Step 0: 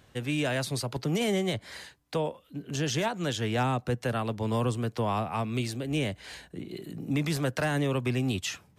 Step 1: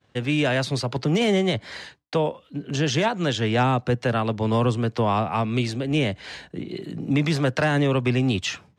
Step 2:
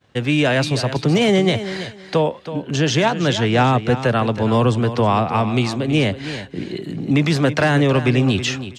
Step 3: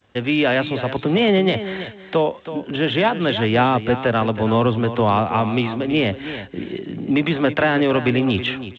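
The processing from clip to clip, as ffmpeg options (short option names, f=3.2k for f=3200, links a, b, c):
-af "lowpass=5.5k,agate=range=-33dB:threshold=-51dB:ratio=3:detection=peak,highpass=75,volume=7dB"
-af "aecho=1:1:324|648|972:0.251|0.0502|0.01,volume=5dB"
-af "aresample=8000,aresample=44100,equalizer=f=140:w=5:g=-13" -ar 16000 -c:a g722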